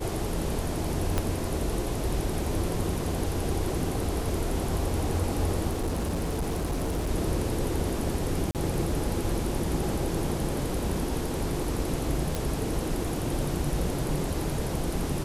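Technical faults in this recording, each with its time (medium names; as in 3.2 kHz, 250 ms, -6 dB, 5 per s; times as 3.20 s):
1.18 s: pop -12 dBFS
5.69–7.11 s: clipped -25 dBFS
8.51–8.55 s: dropout 38 ms
12.35 s: pop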